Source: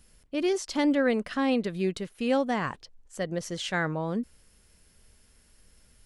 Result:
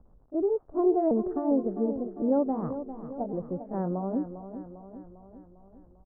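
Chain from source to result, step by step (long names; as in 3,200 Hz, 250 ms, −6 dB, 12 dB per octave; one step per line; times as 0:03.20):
pitch shifter swept by a sawtooth +4.5 semitones, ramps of 1,110 ms
surface crackle 100 per second −41 dBFS
Bessel low-pass filter 600 Hz, order 8
repeating echo 400 ms, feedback 57%, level −11 dB
level +3 dB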